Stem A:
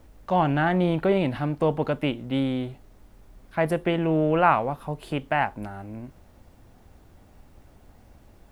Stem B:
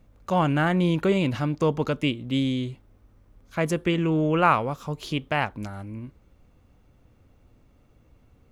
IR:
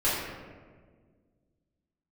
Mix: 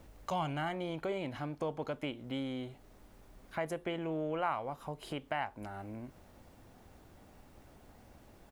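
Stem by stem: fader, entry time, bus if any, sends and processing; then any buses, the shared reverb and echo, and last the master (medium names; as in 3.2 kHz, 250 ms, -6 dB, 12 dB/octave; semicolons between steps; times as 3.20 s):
-1.5 dB, 0.00 s, no send, compression 2:1, threshold -39 dBFS, peak gain reduction 14 dB
+0.5 dB, 1.2 ms, no send, high-order bell 640 Hz -14.5 dB 3 oct; compression, threshold -28 dBFS, peak gain reduction 6.5 dB; auto duck -16 dB, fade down 1.30 s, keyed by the first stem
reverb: none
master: bass shelf 110 Hz -8.5 dB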